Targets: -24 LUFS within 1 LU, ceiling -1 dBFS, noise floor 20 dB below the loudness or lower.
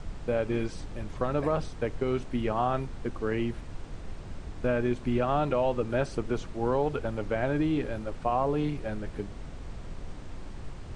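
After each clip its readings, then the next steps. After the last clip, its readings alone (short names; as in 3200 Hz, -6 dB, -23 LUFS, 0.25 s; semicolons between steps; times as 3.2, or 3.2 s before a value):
noise floor -42 dBFS; noise floor target -51 dBFS; loudness -30.5 LUFS; peak -13.5 dBFS; loudness target -24.0 LUFS
-> noise print and reduce 9 dB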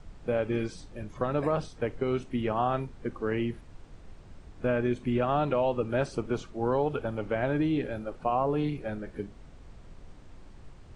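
noise floor -50 dBFS; loudness -30.0 LUFS; peak -14.0 dBFS; loudness target -24.0 LUFS
-> gain +6 dB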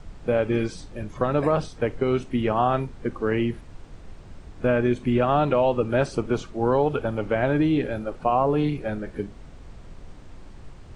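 loudness -24.0 LUFS; peak -8.0 dBFS; noise floor -44 dBFS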